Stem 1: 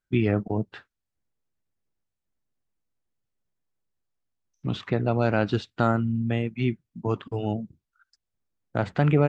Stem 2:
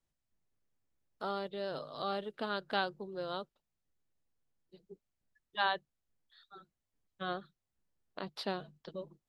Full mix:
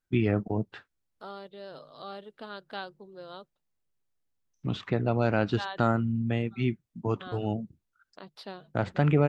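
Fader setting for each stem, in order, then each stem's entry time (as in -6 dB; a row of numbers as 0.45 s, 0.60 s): -2.5 dB, -5.0 dB; 0.00 s, 0.00 s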